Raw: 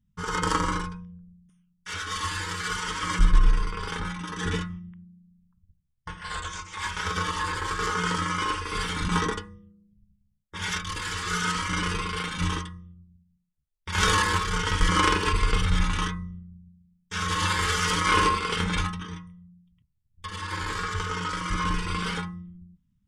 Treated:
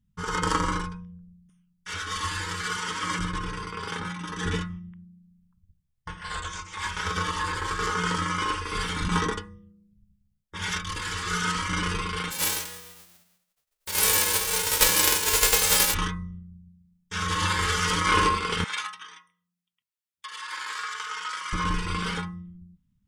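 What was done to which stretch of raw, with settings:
2.66–4.26 s: high-pass 110 Hz
12.30–15.93 s: formants flattened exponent 0.1
18.64–21.53 s: high-pass 1.1 kHz

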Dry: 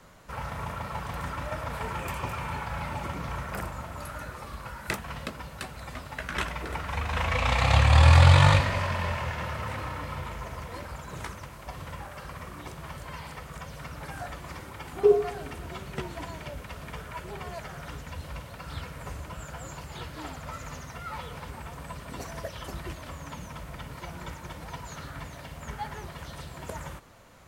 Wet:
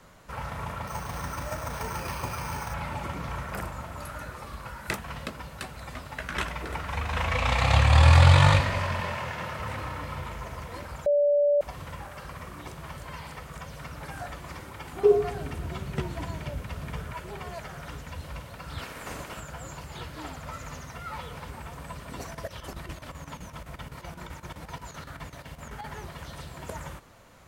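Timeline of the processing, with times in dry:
0.87–2.74 s: careless resampling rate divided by 6×, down none, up hold
9.00–9.60 s: high-pass 120 Hz
11.06–11.61 s: bleep 580 Hz -18.5 dBFS
15.15–17.13 s: peaking EQ 100 Hz +7.5 dB 2.5 oct
18.78–19.39 s: spectral peaks clipped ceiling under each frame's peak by 16 dB
22.25–25.89 s: square tremolo 7.8 Hz, depth 65%, duty 75%

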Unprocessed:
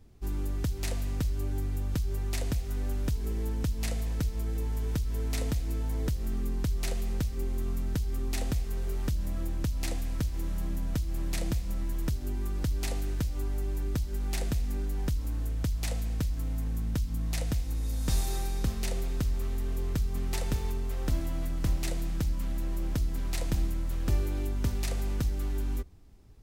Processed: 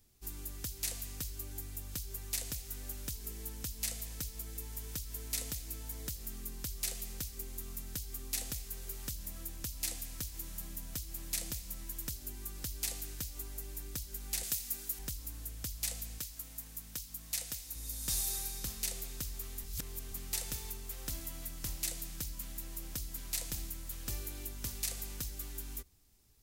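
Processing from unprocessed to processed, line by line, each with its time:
14.43–14.99 s: tilt EQ +2 dB/octave
16.18–17.76 s: bass shelf 350 Hz -8.5 dB
19.64–20.12 s: reverse
whole clip: pre-emphasis filter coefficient 0.9; trim +5 dB

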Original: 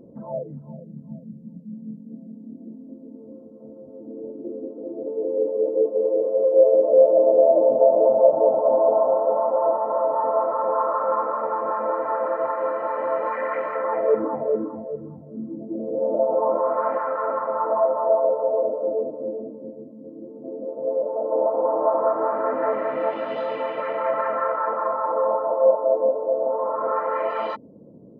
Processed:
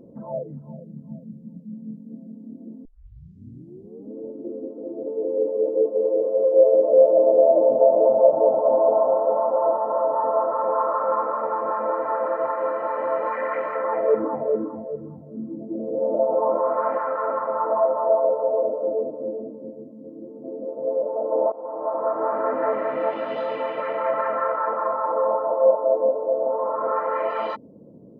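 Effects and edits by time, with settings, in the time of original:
2.85 s: tape start 1.30 s
9.46–10.53 s: Butterworth band-stop 2.3 kHz, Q 2.6
21.52–22.35 s: fade in, from -17.5 dB

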